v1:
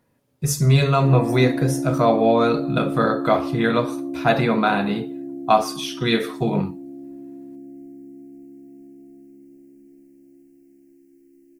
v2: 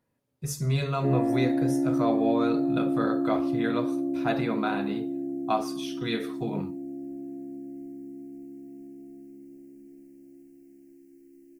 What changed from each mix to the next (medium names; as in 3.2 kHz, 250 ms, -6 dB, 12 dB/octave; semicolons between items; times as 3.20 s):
speech -10.5 dB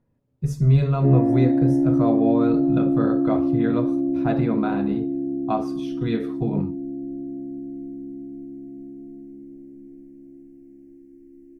master: add tilt EQ -3.5 dB/octave